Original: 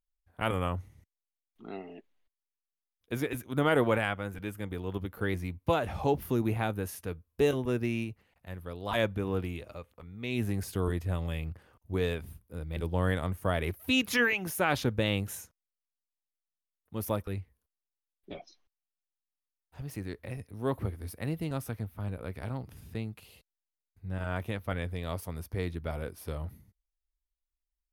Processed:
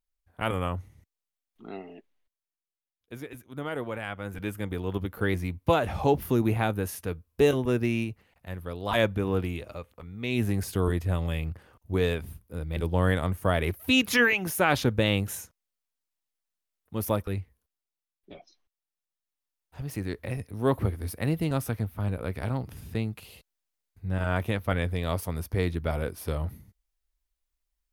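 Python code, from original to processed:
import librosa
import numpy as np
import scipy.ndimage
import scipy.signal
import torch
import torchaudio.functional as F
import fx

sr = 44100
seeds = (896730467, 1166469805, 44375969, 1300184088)

y = fx.gain(x, sr, db=fx.line((1.78, 1.5), (3.25, -8.0), (3.94, -8.0), (4.4, 4.5), (17.4, 4.5), (18.32, -4.0), (20.19, 6.5)))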